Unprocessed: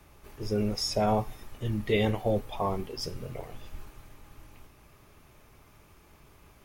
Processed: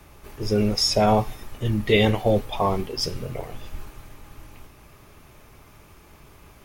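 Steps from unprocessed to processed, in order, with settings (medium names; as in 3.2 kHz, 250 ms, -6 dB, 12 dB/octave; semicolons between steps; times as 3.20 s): dynamic bell 3.7 kHz, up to +4 dB, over -47 dBFS, Q 0.76; trim +7 dB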